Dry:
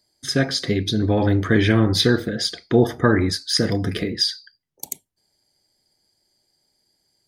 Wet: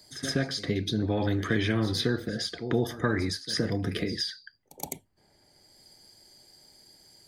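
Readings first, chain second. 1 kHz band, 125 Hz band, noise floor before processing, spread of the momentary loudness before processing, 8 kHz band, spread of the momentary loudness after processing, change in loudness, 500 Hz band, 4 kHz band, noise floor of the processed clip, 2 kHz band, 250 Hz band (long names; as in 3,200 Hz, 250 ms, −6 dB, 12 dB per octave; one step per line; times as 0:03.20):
−9.0 dB, −9.0 dB, −71 dBFS, 16 LU, −8.5 dB, 12 LU, −9.5 dB, −9.5 dB, −9.5 dB, −65 dBFS, −7.5 dB, −9.0 dB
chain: echo ahead of the sound 121 ms −20 dB
multiband upward and downward compressor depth 70%
level −9 dB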